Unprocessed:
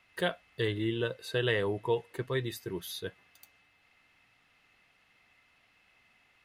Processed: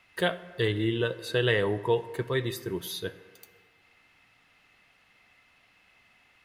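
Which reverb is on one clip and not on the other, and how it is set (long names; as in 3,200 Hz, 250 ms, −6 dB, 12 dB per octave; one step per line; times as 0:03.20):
dense smooth reverb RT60 1.6 s, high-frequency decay 0.45×, DRR 13.5 dB
level +4 dB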